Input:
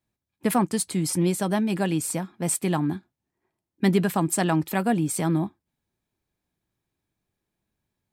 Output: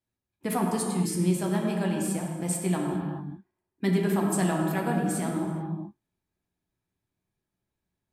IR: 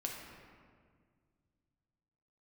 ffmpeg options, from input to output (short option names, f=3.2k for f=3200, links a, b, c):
-filter_complex "[1:a]atrim=start_sample=2205,afade=t=out:st=0.32:d=0.01,atrim=end_sample=14553,asetrate=26901,aresample=44100[a];[0:a][a]afir=irnorm=-1:irlink=0,volume=-7dB"